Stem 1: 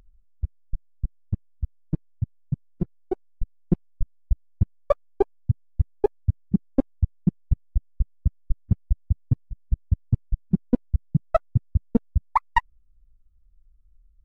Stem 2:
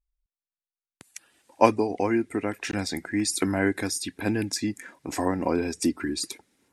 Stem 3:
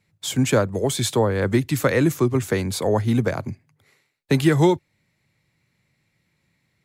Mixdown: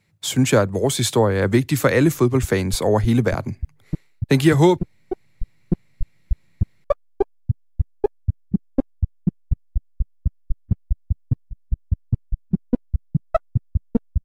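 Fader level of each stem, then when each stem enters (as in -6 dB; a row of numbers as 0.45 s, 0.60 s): +0.5 dB, mute, +2.5 dB; 2.00 s, mute, 0.00 s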